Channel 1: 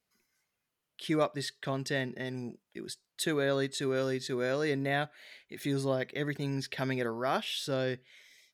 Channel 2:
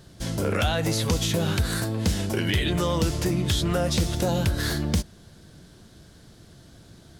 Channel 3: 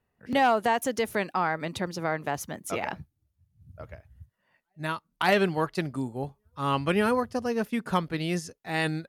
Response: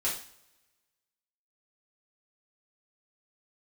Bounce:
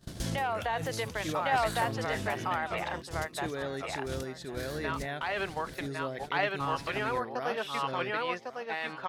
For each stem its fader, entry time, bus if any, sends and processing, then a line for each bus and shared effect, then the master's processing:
-7.0 dB, 0.15 s, no bus, no send, echo send -15 dB, none
+2.0 dB, 0.00 s, bus A, no send, no echo send, treble shelf 9.5 kHz +3 dB; compressor with a negative ratio -34 dBFS, ratio -1; auto duck -7 dB, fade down 1.35 s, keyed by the third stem
+0.5 dB, 0.00 s, bus A, no send, echo send -5 dB, three-band isolator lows -22 dB, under 500 Hz, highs -23 dB, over 4.5 kHz
bus A: 0.0 dB, gate -37 dBFS, range -29 dB; peak limiter -23.5 dBFS, peak gain reduction 11.5 dB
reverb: none
echo: feedback delay 1107 ms, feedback 16%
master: none

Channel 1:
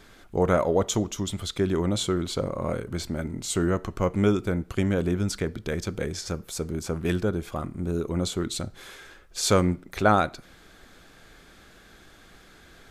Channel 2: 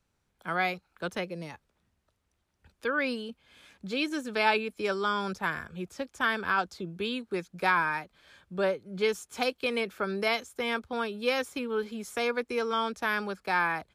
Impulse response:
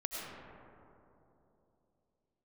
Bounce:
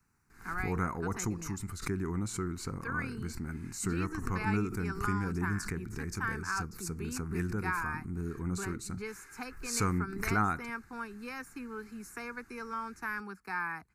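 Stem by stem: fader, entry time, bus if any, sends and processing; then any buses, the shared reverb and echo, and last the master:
-6.5 dB, 0.30 s, no send, swell ahead of each attack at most 86 dB/s
-6.0 dB, 0.00 s, no send, three bands compressed up and down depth 40%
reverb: none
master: static phaser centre 1.4 kHz, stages 4

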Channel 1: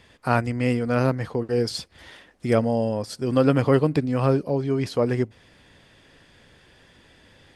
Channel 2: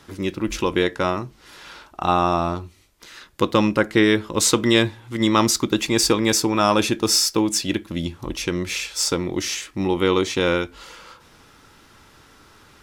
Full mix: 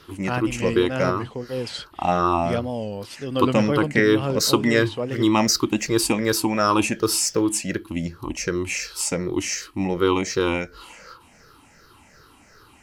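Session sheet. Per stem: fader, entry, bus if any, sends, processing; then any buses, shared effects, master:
-5.5 dB, 0.00 s, no send, wow and flutter 120 cents; peaking EQ 3.1 kHz +11.5 dB 0.48 oct
-3.0 dB, 0.00 s, no send, drifting ripple filter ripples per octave 0.59, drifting -2.7 Hz, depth 13 dB; band-stop 3.5 kHz, Q 5.5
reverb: none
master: none

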